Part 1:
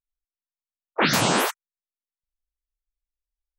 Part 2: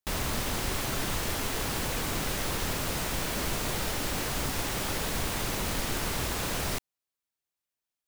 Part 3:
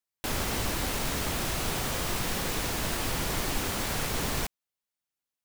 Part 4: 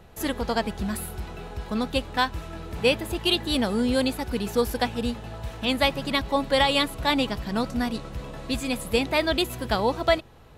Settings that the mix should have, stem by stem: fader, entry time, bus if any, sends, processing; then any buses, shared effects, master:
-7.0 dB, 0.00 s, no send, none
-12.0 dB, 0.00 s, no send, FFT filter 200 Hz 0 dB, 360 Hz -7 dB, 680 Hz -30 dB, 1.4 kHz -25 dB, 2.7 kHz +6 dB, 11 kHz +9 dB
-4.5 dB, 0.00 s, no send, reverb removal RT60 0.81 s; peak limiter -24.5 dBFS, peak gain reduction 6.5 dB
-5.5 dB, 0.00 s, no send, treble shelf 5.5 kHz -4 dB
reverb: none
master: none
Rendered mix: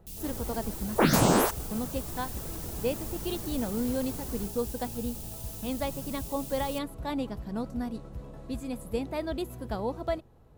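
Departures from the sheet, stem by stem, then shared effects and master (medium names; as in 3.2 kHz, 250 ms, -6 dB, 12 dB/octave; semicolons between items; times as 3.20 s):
stem 1 -7.0 dB -> +2.5 dB; master: extra peaking EQ 2.8 kHz -13 dB 2.7 oct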